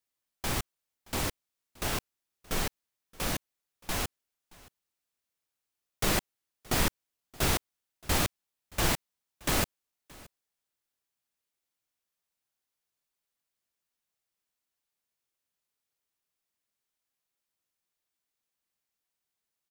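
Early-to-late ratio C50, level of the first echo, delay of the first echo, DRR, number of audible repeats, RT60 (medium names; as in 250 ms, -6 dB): no reverb, -23.5 dB, 624 ms, no reverb, 1, no reverb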